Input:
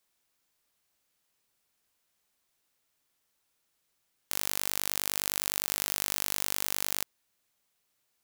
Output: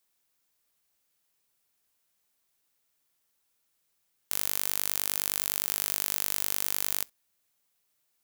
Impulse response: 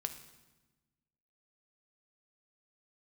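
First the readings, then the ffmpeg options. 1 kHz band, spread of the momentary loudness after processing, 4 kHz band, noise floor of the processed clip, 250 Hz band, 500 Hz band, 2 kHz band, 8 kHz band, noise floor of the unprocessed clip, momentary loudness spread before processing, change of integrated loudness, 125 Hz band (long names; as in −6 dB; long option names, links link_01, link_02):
−2.0 dB, 3 LU, −1.5 dB, −76 dBFS, −2.0 dB, −2.0 dB, −2.0 dB, +0.5 dB, −77 dBFS, 3 LU, +2.0 dB, −2.0 dB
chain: -filter_complex "[0:a]crystalizer=i=0.5:c=0,asplit=2[link_01][link_02];[1:a]atrim=start_sample=2205,atrim=end_sample=3087[link_03];[link_02][link_03]afir=irnorm=-1:irlink=0,volume=-11.5dB[link_04];[link_01][link_04]amix=inputs=2:normalize=0,volume=-4dB"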